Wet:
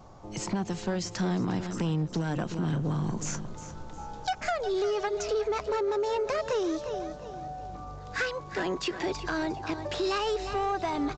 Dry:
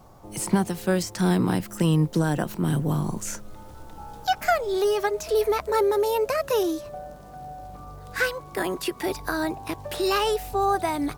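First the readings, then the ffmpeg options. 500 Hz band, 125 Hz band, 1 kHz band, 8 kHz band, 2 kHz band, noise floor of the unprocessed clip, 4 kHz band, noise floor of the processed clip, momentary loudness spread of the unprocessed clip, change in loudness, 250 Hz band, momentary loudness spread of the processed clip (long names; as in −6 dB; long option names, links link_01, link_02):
−5.5 dB, −5.5 dB, −5.5 dB, −5.5 dB, −5.5 dB, −44 dBFS, −4.5 dB, −43 dBFS, 17 LU, −6.0 dB, −5.5 dB, 11 LU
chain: -af "aecho=1:1:356|712|1068:0.2|0.0698|0.0244,acompressor=threshold=-23dB:ratio=6,aresample=16000,asoftclip=type=tanh:threshold=-22dB,aresample=44100"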